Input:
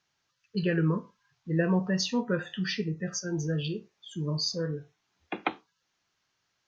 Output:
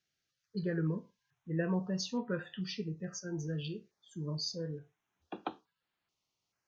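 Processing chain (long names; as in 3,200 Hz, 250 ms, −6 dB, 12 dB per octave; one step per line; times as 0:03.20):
notch on a step sequencer 2.3 Hz 970–6,000 Hz
level −7 dB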